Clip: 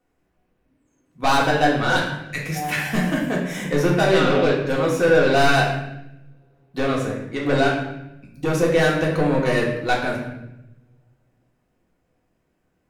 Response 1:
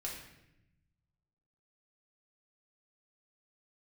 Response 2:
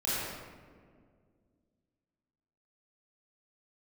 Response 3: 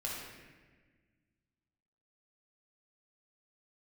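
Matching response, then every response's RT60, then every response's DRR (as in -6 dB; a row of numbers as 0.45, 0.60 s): 1; 0.85, 2.0, 1.4 s; -4.0, -10.5, -4.0 dB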